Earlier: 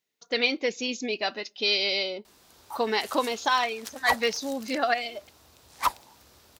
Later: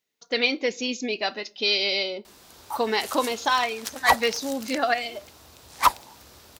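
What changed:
speech: send +11.0 dB
background +6.5 dB

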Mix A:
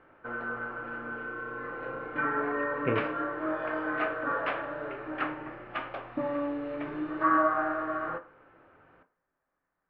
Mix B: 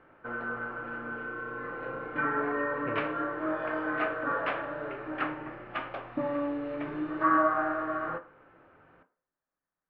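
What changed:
speech −10.0 dB
master: add parametric band 170 Hz +2.5 dB 0.88 octaves

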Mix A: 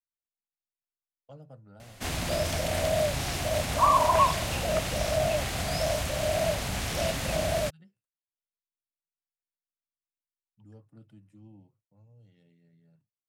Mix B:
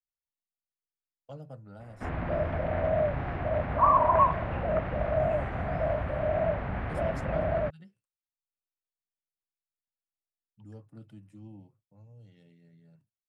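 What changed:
speech +4.5 dB
background: add low-pass filter 1,800 Hz 24 dB per octave

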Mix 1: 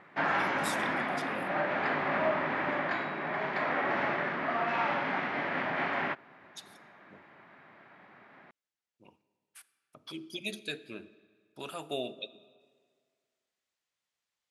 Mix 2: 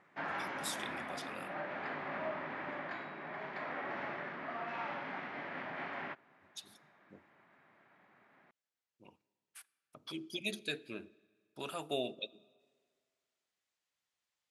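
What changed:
speech: send −7.5 dB
background −10.5 dB

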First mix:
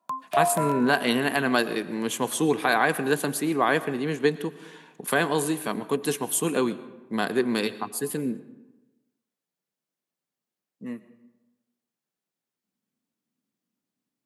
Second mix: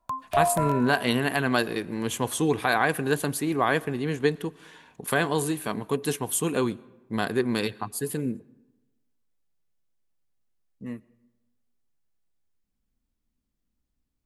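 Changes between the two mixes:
speech: send −9.5 dB
master: remove high-pass filter 160 Hz 24 dB per octave

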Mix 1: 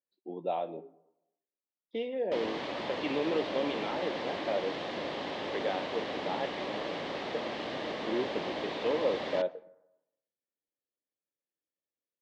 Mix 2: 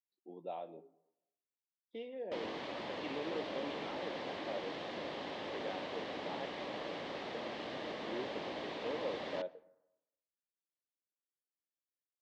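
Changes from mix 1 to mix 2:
speech −10.5 dB
background −6.0 dB

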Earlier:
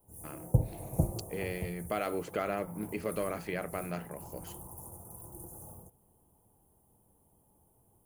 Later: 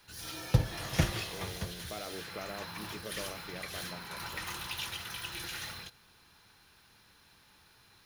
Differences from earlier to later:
speech −9.5 dB
background: remove inverse Chebyshev band-stop filter 1,800–4,400 Hz, stop band 60 dB

